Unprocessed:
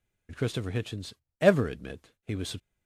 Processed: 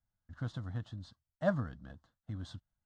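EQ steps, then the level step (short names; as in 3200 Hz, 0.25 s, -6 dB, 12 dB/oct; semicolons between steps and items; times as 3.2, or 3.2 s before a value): air absorption 160 m; fixed phaser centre 1000 Hz, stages 4; -5.0 dB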